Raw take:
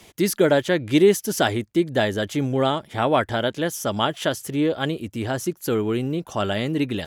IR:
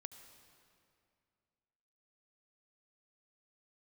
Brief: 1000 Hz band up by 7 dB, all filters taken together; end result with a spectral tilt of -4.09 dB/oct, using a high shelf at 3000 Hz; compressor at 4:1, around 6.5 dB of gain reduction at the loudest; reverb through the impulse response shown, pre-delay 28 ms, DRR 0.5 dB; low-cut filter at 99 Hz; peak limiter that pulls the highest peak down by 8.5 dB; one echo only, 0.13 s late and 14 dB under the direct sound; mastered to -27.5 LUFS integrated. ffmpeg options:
-filter_complex "[0:a]highpass=99,equalizer=f=1k:t=o:g=8.5,highshelf=f=3k:g=9,acompressor=threshold=-17dB:ratio=4,alimiter=limit=-13.5dB:level=0:latency=1,aecho=1:1:130:0.2,asplit=2[a][b];[1:a]atrim=start_sample=2205,adelay=28[c];[b][c]afir=irnorm=-1:irlink=0,volume=5dB[d];[a][d]amix=inputs=2:normalize=0,volume=-5dB"

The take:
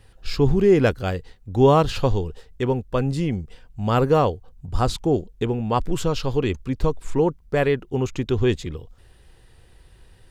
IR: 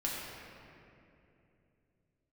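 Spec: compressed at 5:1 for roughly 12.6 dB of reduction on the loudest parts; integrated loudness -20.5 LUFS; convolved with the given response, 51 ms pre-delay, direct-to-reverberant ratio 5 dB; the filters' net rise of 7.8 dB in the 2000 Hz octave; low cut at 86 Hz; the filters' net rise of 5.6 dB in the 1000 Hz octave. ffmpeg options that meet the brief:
-filter_complex "[0:a]highpass=86,equalizer=f=1k:t=o:g=5,equalizer=f=2k:t=o:g=8.5,acompressor=threshold=-24dB:ratio=5,asplit=2[a][b];[1:a]atrim=start_sample=2205,adelay=51[c];[b][c]afir=irnorm=-1:irlink=0,volume=-9.5dB[d];[a][d]amix=inputs=2:normalize=0,volume=7.5dB"

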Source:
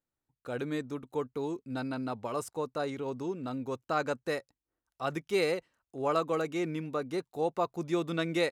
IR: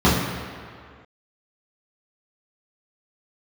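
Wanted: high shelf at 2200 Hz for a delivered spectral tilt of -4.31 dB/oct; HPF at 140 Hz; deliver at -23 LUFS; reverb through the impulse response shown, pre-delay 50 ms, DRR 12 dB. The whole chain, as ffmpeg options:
-filter_complex "[0:a]highpass=140,highshelf=f=2.2k:g=-9,asplit=2[a][b];[1:a]atrim=start_sample=2205,adelay=50[c];[b][c]afir=irnorm=-1:irlink=0,volume=-35dB[d];[a][d]amix=inputs=2:normalize=0,volume=11dB"

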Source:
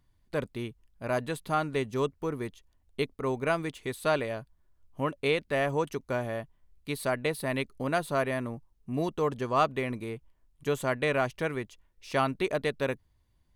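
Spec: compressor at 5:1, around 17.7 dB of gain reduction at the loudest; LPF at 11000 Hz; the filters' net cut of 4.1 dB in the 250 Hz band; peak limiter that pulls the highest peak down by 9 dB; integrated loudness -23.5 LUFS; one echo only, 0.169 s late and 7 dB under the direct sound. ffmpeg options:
-af "lowpass=11k,equalizer=f=250:t=o:g=-5.5,acompressor=threshold=-42dB:ratio=5,alimiter=level_in=13dB:limit=-24dB:level=0:latency=1,volume=-13dB,aecho=1:1:169:0.447,volume=24.5dB"

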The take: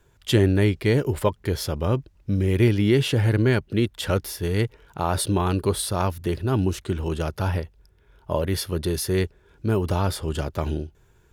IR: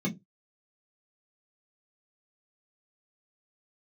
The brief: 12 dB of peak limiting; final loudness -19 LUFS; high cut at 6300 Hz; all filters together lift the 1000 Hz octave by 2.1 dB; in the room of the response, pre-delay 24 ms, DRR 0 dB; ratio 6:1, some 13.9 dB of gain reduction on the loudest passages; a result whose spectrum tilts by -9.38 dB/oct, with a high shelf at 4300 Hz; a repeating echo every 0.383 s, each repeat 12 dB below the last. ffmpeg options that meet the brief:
-filter_complex "[0:a]lowpass=6.3k,equalizer=f=1k:t=o:g=3,highshelf=f=4.3k:g=-7.5,acompressor=threshold=-29dB:ratio=6,alimiter=level_in=3.5dB:limit=-24dB:level=0:latency=1,volume=-3.5dB,aecho=1:1:383|766|1149:0.251|0.0628|0.0157,asplit=2[a][b];[1:a]atrim=start_sample=2205,adelay=24[c];[b][c]afir=irnorm=-1:irlink=0,volume=-5dB[d];[a][d]amix=inputs=2:normalize=0,volume=7dB"

